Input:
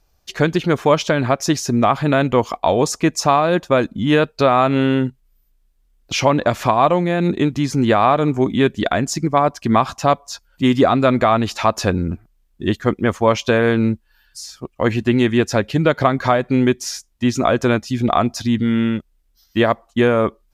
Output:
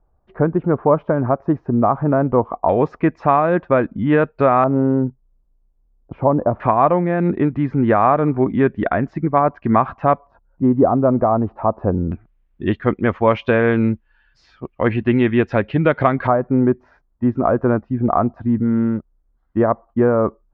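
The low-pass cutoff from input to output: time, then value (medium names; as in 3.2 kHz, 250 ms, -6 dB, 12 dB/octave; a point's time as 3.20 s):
low-pass 24 dB/octave
1.2 kHz
from 2.69 s 2 kHz
from 4.64 s 1 kHz
from 6.60 s 1.9 kHz
from 10.27 s 1 kHz
from 12.12 s 2.6 kHz
from 16.27 s 1.3 kHz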